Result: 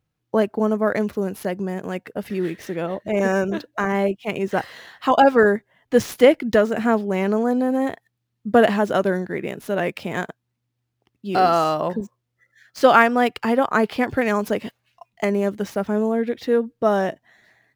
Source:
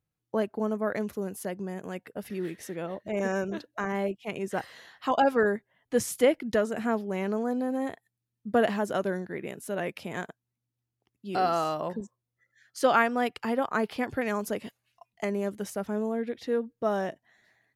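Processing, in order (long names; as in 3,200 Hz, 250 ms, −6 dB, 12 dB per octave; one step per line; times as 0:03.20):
running median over 5 samples
level +9 dB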